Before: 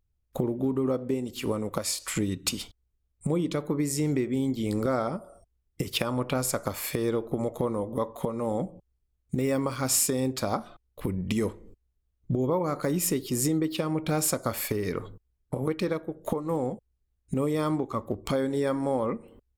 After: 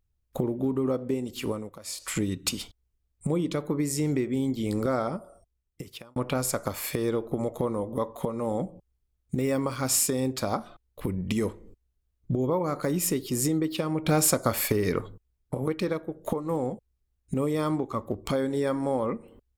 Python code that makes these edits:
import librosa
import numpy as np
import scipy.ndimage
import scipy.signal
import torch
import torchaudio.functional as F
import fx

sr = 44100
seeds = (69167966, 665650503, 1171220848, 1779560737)

y = fx.edit(x, sr, fx.fade_down_up(start_s=1.44, length_s=0.67, db=-16.5, fade_s=0.33),
    fx.fade_out_span(start_s=5.16, length_s=1.0),
    fx.clip_gain(start_s=14.05, length_s=0.96, db=4.0), tone=tone)